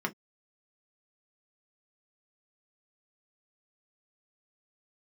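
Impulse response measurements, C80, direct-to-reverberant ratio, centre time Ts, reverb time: 52.5 dB, 2.0 dB, 6 ms, no single decay rate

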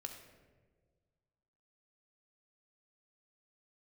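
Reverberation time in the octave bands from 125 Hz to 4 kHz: 2.1 s, 1.8 s, 1.8 s, 1.3 s, 1.1 s, 0.75 s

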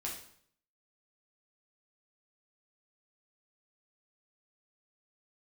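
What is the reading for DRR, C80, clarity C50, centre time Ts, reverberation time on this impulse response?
-3.5 dB, 9.5 dB, 5.0 dB, 33 ms, 0.60 s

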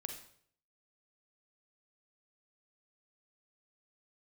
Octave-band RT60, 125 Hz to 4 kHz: 0.75 s, 0.60 s, 0.65 s, 0.55 s, 0.55 s, 0.55 s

